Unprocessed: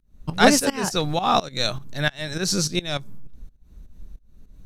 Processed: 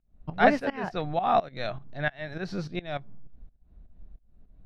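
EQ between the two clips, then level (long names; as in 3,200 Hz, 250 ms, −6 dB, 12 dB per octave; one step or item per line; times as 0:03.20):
dynamic equaliser 1,900 Hz, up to +7 dB, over −38 dBFS, Q 1.7
high-frequency loss of the air 370 metres
parametric band 690 Hz +9.5 dB 0.39 octaves
−7.5 dB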